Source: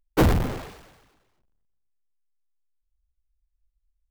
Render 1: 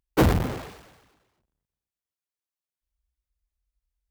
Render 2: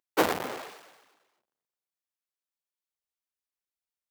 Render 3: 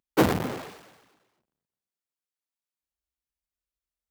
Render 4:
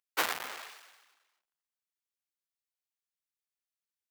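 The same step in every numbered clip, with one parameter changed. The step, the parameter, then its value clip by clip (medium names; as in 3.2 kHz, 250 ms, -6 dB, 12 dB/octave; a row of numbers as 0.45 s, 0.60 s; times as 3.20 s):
high-pass, cutoff frequency: 48 Hz, 460 Hz, 170 Hz, 1.3 kHz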